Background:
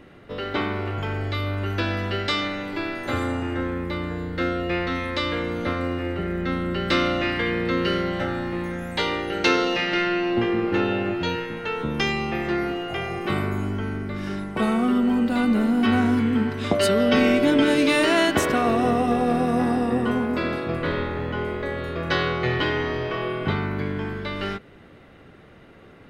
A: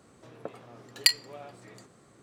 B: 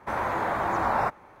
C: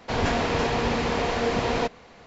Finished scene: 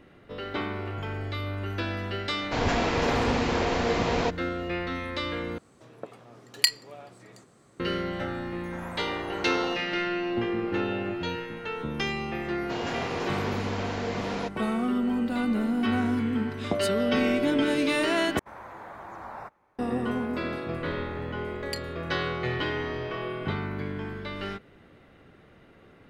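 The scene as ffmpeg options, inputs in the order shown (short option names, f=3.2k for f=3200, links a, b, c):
-filter_complex "[3:a]asplit=2[a][b];[1:a]asplit=2[c][d];[2:a]asplit=2[e][f];[0:a]volume=-6dB[g];[b]highpass=130[h];[d]aresample=32000,aresample=44100[i];[g]asplit=3[j][k][l];[j]atrim=end=5.584[m];[c]atrim=end=2.22,asetpts=PTS-STARTPTS,volume=-0.5dB[n];[k]atrim=start=7.796:end=18.394[o];[f]atrim=end=1.4,asetpts=PTS-STARTPTS,volume=-15.5dB[p];[l]atrim=start=19.786[q];[a]atrim=end=2.26,asetpts=PTS-STARTPTS,volume=-1.5dB,afade=t=in:d=0.004:c=hsin,afade=t=out:st=2.256:d=0.004:c=hsin,adelay=2430[r];[e]atrim=end=1.4,asetpts=PTS-STARTPTS,volume=-14dB,afade=t=in:d=0.004:c=hsin,afade=t=out:st=1.396:d=0.004:c=hsin,adelay=8650[s];[h]atrim=end=2.26,asetpts=PTS-STARTPTS,volume=-7.5dB,afade=t=in:d=0.004:c=hsin,afade=t=out:st=2.256:d=0.004:c=hsin,adelay=12610[t];[i]atrim=end=2.22,asetpts=PTS-STARTPTS,volume=-15.5dB,afade=t=in:d=0.004:c=hsin,afade=t=out:st=2.216:d=0.004:c=hsin,adelay=20670[u];[m][n]acrossfade=d=0.004:c1=hsin:c2=hsin[v];[v][o]acrossfade=d=0.004:c1=hsin:c2=hsin[w];[w][p]acrossfade=d=0.004:c1=hsin:c2=hsin[x];[x][q]acrossfade=d=0.004:c1=hsin:c2=hsin[y];[y][r][s][t][u]amix=inputs=5:normalize=0"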